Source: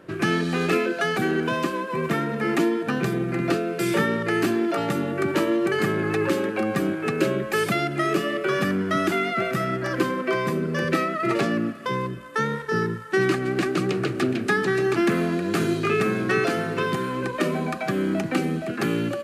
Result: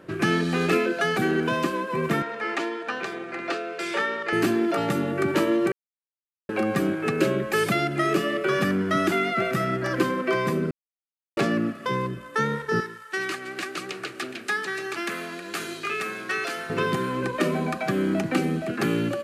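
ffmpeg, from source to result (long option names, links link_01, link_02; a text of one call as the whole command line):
ffmpeg -i in.wav -filter_complex "[0:a]asettb=1/sr,asplit=3[link_01][link_02][link_03];[link_01]atrim=end=2.224[link_04];[link_02]atrim=start=2.22:end=4.33,asetpts=PTS-STARTPTS,afade=type=in:duration=0.004:curve=qsin,afade=type=out:start_time=2.106:duration=0.004:curve=qsin,highpass=580,lowpass=5800[link_05];[link_03]atrim=start=4.326[link_06];[link_04][link_05]acrossfade=duration=0.004:curve1=hsin:curve2=qsin[link_07];[link_07][link_06]acrossfade=duration=0.004:curve1=qsin:curve2=hsin,asettb=1/sr,asplit=3[link_08][link_09][link_10];[link_08]atrim=end=12.804[link_11];[link_09]atrim=start=12.8:end=16.7,asetpts=PTS-STARTPTS,afade=type=in:duration=0.004:curve=qsin,afade=type=out:start_time=3.896:duration=0.004:curve=qsin,highpass=frequency=1500:poles=1[link_12];[link_10]atrim=start=16.696[link_13];[link_11][link_12]acrossfade=duration=0.004:curve1=hsin:curve2=qsin[link_14];[link_14][link_13]acrossfade=duration=0.004:curve1=qsin:curve2=hsin,asplit=5[link_15][link_16][link_17][link_18][link_19];[link_15]atrim=end=5.72,asetpts=PTS-STARTPTS,afade=type=out:start_time=5.716:duration=0.004:curve=hsin[link_20];[link_16]atrim=start=5.72:end=6.49,asetpts=PTS-STARTPTS,volume=0[link_21];[link_17]atrim=start=6.49:end=10.71,asetpts=PTS-STARTPTS,afade=type=in:duration=0.004:curve=hsin,afade=type=out:start_time=4.216:duration=0.004:curve=hsin[link_22];[link_18]atrim=start=10.71:end=11.37,asetpts=PTS-STARTPTS,volume=0[link_23];[link_19]atrim=start=11.37,asetpts=PTS-STARTPTS,afade=type=in:duration=0.004:curve=hsin[link_24];[link_20][link_21][link_22][link_23][link_24]concat=n=5:v=0:a=1" out.wav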